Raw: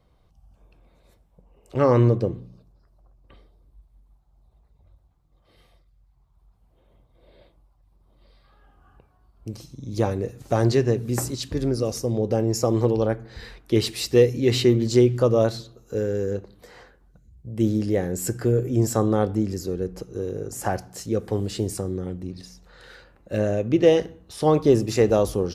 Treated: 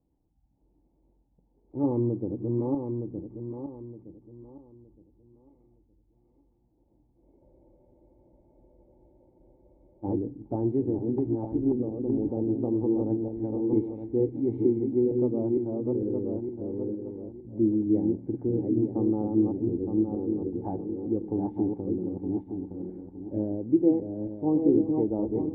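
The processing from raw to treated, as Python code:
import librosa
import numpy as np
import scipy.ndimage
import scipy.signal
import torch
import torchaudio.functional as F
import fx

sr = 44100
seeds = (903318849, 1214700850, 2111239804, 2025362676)

p1 = fx.reverse_delay_fb(x, sr, ms=458, feedback_pct=53, wet_db=-3.0)
p2 = fx.rider(p1, sr, range_db=4, speed_s=0.5)
p3 = p1 + F.gain(torch.from_numpy(p2), 0.5).numpy()
p4 = fx.formant_cascade(p3, sr, vowel='u')
p5 = fx.spec_freeze(p4, sr, seeds[0], at_s=7.41, hold_s=2.63)
y = F.gain(torch.from_numpy(p5), -4.0).numpy()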